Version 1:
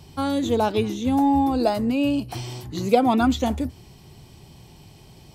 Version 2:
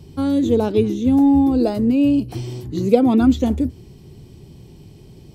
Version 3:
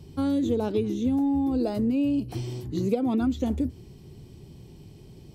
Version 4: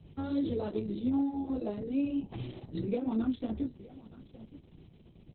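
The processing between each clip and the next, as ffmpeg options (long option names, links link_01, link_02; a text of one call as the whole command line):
ffmpeg -i in.wav -af "lowshelf=frequency=560:width_type=q:width=1.5:gain=8.5,volume=-3.5dB" out.wav
ffmpeg -i in.wav -af "acompressor=threshold=-17dB:ratio=6,volume=-4.5dB" out.wav
ffmpeg -i in.wav -af "aecho=1:1:922:0.119,flanger=delay=18:depth=2.7:speed=2.5,volume=-4dB" -ar 48000 -c:a libopus -b:a 6k out.opus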